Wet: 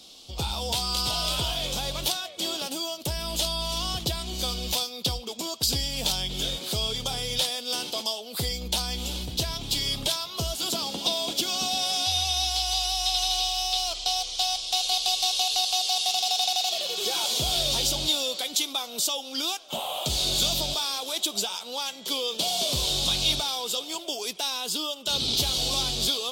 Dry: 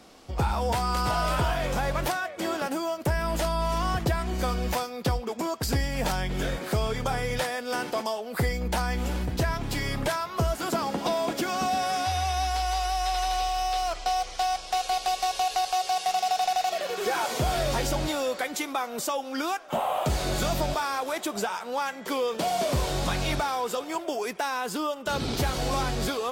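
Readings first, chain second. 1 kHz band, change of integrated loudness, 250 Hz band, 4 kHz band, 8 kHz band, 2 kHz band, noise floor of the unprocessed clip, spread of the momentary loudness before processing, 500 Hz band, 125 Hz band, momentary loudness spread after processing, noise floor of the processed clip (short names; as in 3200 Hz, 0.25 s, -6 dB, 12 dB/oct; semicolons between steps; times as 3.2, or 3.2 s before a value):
-7.0 dB, +2.5 dB, -5.5 dB, +11.0 dB, +7.5 dB, -5.5 dB, -39 dBFS, 4 LU, -6.0 dB, -5.5 dB, 7 LU, -41 dBFS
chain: resonant high shelf 2500 Hz +11.5 dB, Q 3; gain -5.5 dB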